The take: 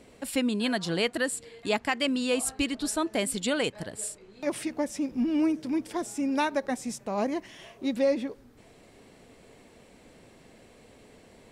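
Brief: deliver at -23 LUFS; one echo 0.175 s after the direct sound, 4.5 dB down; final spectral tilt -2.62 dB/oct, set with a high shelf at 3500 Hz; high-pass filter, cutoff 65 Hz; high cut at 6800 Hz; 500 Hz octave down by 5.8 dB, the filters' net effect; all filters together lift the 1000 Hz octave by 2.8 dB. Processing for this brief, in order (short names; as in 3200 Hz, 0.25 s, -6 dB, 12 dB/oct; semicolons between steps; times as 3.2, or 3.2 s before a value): HPF 65 Hz; LPF 6800 Hz; bell 500 Hz -9 dB; bell 1000 Hz +6 dB; high shelf 3500 Hz +6 dB; echo 0.175 s -4.5 dB; gain +5.5 dB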